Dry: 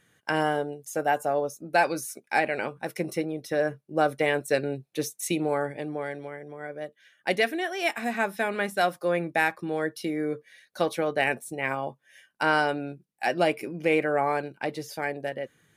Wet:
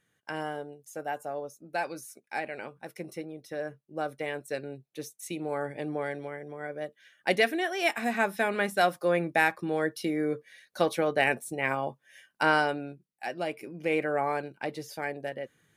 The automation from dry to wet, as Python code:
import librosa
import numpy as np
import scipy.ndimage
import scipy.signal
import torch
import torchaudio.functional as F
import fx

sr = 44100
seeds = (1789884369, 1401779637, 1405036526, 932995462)

y = fx.gain(x, sr, db=fx.line((5.3, -9.5), (5.89, 0.0), (12.46, 0.0), (13.38, -10.0), (14.03, -3.5)))